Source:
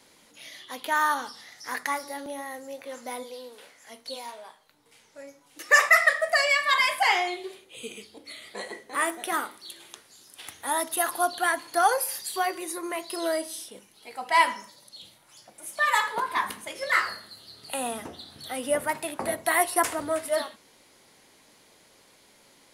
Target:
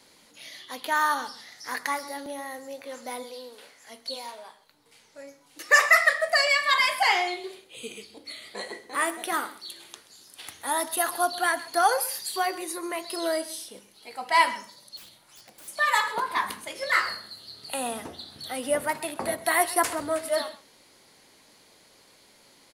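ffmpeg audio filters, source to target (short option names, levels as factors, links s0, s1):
-filter_complex "[0:a]equalizer=f=4400:t=o:w=0.25:g=5,aecho=1:1:130:0.126,asettb=1/sr,asplit=3[s0][s1][s2];[s0]atrim=end=14.974[s3];[s1]atrim=start=14.97:end=15.68,asetpts=PTS-STARTPTS,afade=t=in:d=0.004:c=qsin,afade=t=out:st=0.706:d=0.004:c=qsin,aeval=exprs='(mod(126*val(0)+1,2)-1)/126':c=same[s4];[s2]atrim=start=15.676[s5];[s3][s4]acrossfade=d=0.004:c1=hsin:c2=qsin[s6];[s6][s5]acrossfade=d=0.004:c1=qsin:c2=hsin"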